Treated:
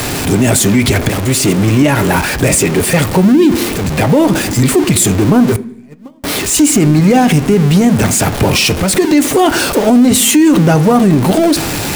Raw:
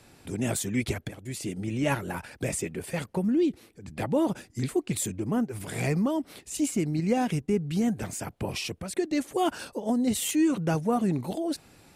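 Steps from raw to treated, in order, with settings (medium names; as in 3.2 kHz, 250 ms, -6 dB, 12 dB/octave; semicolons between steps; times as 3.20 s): jump at every zero crossing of -31.5 dBFS; 5.56–6.24 s: gate -19 dBFS, range -44 dB; on a send at -10 dB: reverberation RT60 0.65 s, pre-delay 3 ms; on the sum: loudness maximiser +19.5 dB; trim -1 dB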